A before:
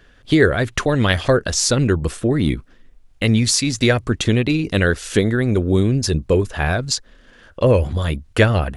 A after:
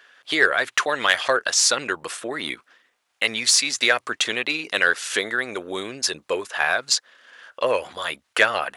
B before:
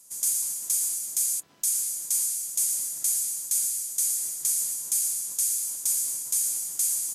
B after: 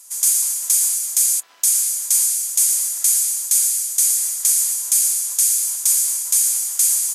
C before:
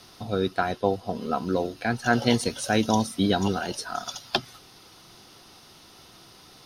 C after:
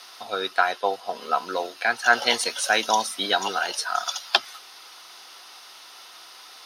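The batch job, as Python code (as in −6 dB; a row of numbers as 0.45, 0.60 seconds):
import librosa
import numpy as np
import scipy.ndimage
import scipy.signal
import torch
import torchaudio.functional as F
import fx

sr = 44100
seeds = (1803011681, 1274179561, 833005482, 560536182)

y = scipy.signal.sosfilt(scipy.signal.butter(2, 950.0, 'highpass', fs=sr, output='sos'), x)
y = fx.high_shelf(y, sr, hz=3400.0, db=-4.5)
y = 10.0 ** (-7.0 / 20.0) * np.tanh(y / 10.0 ** (-7.0 / 20.0))
y = librosa.util.normalize(y) * 10.0 ** (-3 / 20.0)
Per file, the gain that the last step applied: +5.0, +13.5, +9.5 decibels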